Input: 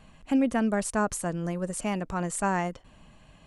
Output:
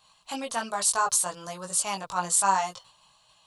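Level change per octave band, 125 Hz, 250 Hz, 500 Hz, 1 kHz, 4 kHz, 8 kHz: -12.0 dB, -14.0 dB, -5.0 dB, +5.5 dB, +11.0 dB, +11.0 dB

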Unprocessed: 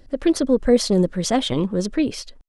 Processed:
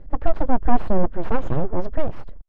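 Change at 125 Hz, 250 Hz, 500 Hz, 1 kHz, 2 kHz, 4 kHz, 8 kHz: -2.0 dB, -8.0 dB, -6.5 dB, +4.0 dB, -4.0 dB, under -20 dB, under -35 dB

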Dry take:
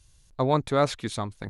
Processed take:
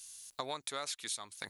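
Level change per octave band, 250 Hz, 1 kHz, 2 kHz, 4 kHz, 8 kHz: -24.0 dB, -14.5 dB, -7.5 dB, -3.0 dB, +2.5 dB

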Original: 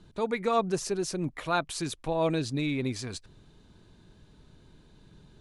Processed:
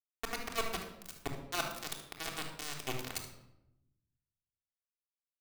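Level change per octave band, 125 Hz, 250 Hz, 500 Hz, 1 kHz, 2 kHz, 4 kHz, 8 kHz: -14.0 dB, -16.5 dB, -14.5 dB, -10.0 dB, -4.0 dB, -2.5 dB, -4.0 dB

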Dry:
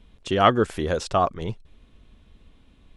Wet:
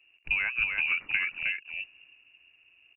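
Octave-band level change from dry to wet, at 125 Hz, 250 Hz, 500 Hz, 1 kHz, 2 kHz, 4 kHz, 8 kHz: under -25 dB, under -30 dB, under -35 dB, -25.5 dB, +7.5 dB, -6.5 dB, under -35 dB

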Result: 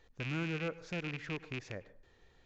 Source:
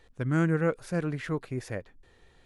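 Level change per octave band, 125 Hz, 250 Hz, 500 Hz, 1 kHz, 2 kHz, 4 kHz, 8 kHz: -11.0 dB, -11.5 dB, -11.5 dB, -10.0 dB, -4.5 dB, +3.5 dB, -9.0 dB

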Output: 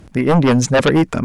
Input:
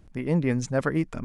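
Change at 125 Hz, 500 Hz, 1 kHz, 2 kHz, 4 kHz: +10.0 dB, +12.5 dB, +16.0 dB, +12.0 dB, +20.5 dB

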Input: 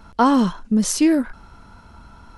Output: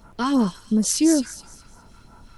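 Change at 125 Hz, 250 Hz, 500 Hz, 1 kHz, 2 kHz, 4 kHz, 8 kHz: -2.5 dB, -2.5 dB, -3.0 dB, -9.0 dB, -5.5 dB, +0.5 dB, +2.0 dB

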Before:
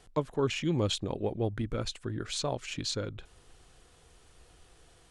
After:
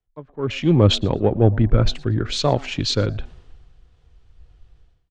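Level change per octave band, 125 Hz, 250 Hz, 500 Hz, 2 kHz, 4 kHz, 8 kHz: +16.0 dB, +13.0 dB, +11.5 dB, +9.0 dB, +11.0 dB, +4.5 dB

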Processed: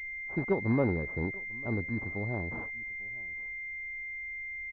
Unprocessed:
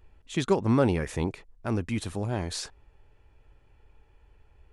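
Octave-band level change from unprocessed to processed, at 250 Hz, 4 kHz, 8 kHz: -4.5 dB, under -25 dB, under -30 dB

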